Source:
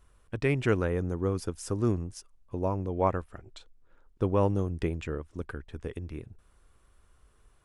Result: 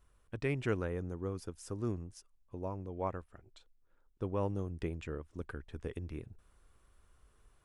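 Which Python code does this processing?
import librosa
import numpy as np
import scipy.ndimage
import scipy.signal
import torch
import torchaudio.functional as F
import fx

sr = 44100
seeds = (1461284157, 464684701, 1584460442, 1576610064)

y = fx.rider(x, sr, range_db=5, speed_s=2.0)
y = F.gain(torch.from_numpy(y), -8.5).numpy()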